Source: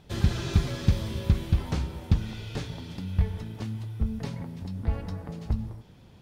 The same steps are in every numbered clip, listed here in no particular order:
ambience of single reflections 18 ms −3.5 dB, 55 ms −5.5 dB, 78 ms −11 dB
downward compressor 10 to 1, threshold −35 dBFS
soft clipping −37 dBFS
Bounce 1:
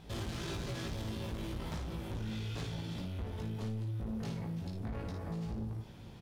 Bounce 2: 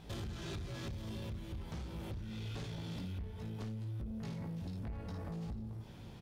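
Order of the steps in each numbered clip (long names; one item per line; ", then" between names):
soft clipping, then ambience of single reflections, then downward compressor
ambience of single reflections, then downward compressor, then soft clipping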